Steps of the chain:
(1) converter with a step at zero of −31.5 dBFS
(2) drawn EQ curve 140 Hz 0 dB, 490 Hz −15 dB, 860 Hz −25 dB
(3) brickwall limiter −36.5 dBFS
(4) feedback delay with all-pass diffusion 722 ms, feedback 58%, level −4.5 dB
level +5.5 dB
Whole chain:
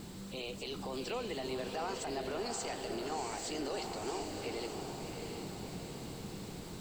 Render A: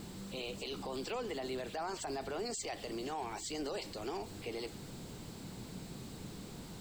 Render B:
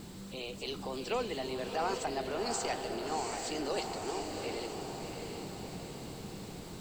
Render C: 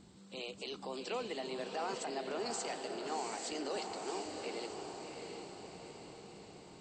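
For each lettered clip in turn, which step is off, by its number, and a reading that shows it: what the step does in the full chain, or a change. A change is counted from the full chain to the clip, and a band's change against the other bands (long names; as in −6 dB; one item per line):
4, echo-to-direct ratio −2.5 dB to none audible
3, change in crest factor +2.5 dB
1, distortion level −14 dB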